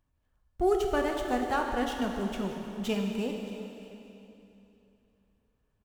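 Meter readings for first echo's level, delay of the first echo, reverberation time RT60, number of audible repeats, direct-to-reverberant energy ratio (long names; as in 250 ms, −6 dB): −20.0 dB, 624 ms, 2.9 s, 1, 1.5 dB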